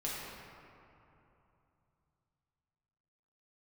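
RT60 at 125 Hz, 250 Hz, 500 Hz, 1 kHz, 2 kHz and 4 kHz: 4.2, 3.3, 2.9, 3.0, 2.3, 1.4 s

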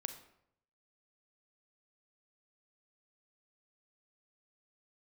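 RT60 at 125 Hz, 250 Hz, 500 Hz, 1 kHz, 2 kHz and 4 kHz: 0.95, 0.75, 0.75, 0.70, 0.60, 0.50 s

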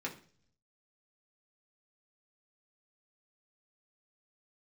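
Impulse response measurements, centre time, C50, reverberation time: 14 ms, 12.5 dB, 0.45 s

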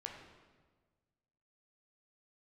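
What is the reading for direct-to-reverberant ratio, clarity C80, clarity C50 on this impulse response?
0.5 dB, 5.5 dB, 3.5 dB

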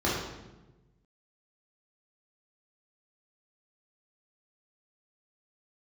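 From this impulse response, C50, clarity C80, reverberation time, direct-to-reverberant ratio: 1.0 dB, 4.0 dB, 1.1 s, -7.0 dB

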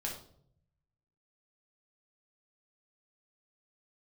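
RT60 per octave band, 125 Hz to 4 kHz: 1.3, 0.95, 0.75, 0.55, 0.40, 0.45 s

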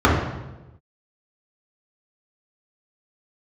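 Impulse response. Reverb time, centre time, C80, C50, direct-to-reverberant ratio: 1.1 s, 53 ms, 5.0 dB, 2.0 dB, -6.0 dB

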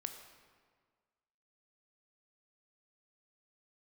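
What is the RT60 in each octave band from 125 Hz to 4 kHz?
1.7, 1.7, 1.7, 1.7, 1.4, 1.1 s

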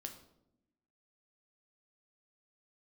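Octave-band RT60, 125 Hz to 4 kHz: 1.1, 1.3, 0.95, 0.70, 0.55, 0.50 s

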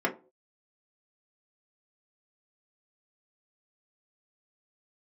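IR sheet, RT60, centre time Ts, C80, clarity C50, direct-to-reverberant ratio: not exponential, 11 ms, 21.0 dB, 14.5 dB, -1.0 dB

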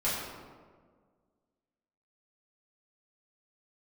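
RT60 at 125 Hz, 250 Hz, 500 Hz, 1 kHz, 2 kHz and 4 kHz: 1.9, 2.0, 1.8, 1.5, 1.1, 0.80 s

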